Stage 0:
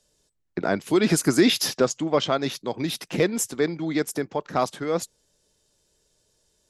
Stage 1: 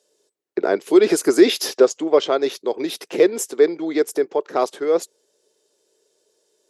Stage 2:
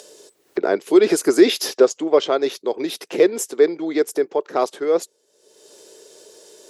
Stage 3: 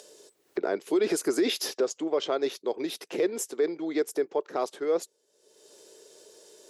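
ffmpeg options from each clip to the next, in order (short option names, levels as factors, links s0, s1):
-af "highpass=f=400:t=q:w=3.5"
-af "acompressor=mode=upward:threshold=0.0355:ratio=2.5"
-af "alimiter=limit=0.316:level=0:latency=1:release=39,volume=0.447"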